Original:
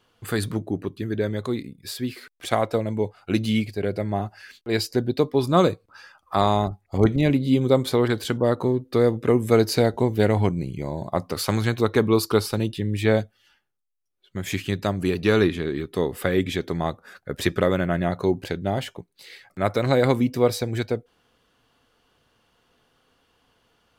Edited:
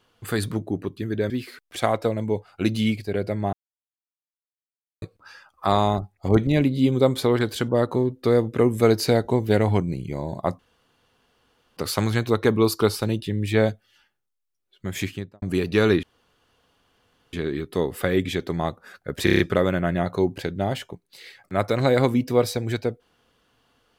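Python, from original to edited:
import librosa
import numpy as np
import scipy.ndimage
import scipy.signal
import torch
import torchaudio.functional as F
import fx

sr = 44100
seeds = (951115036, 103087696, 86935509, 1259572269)

y = fx.studio_fade_out(x, sr, start_s=14.49, length_s=0.44)
y = fx.edit(y, sr, fx.cut(start_s=1.3, length_s=0.69),
    fx.silence(start_s=4.22, length_s=1.49),
    fx.insert_room_tone(at_s=11.28, length_s=1.18),
    fx.insert_room_tone(at_s=15.54, length_s=1.3),
    fx.stutter(start_s=17.45, slice_s=0.03, count=6), tone=tone)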